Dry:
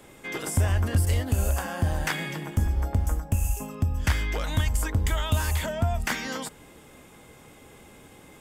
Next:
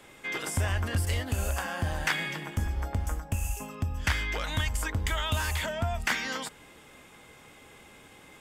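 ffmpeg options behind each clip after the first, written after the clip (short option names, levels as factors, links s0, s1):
-af "equalizer=f=2400:w=0.36:g=8,volume=0.501"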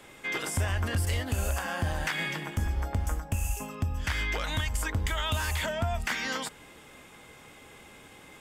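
-af "alimiter=limit=0.0841:level=0:latency=1:release=101,volume=1.19"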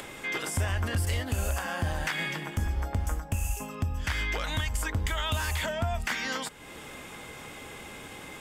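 -af "acompressor=mode=upward:threshold=0.02:ratio=2.5"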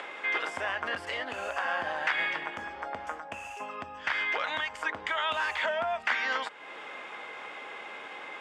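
-af "highpass=610,lowpass=2500,volume=1.78"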